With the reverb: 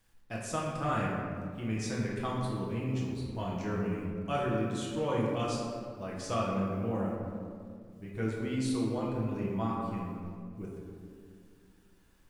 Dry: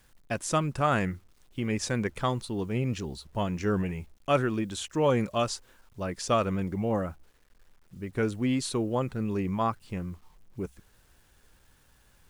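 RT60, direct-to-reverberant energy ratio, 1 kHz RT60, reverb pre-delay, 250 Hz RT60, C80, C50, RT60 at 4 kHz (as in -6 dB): 2.2 s, -4.5 dB, 1.9 s, 6 ms, 3.0 s, 2.0 dB, 0.5 dB, 1.1 s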